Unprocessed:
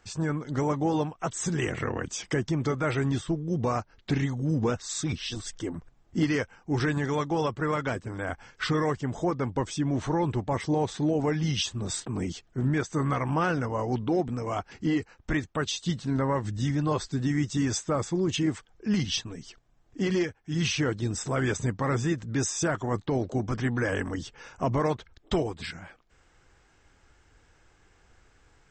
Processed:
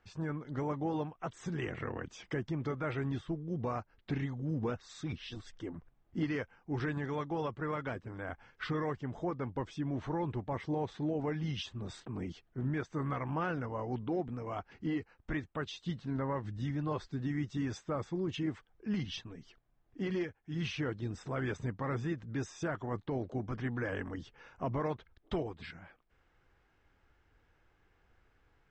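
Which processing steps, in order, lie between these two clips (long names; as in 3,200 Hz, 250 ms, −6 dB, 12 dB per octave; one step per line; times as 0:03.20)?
low-pass filter 3,300 Hz 12 dB per octave
level −8.5 dB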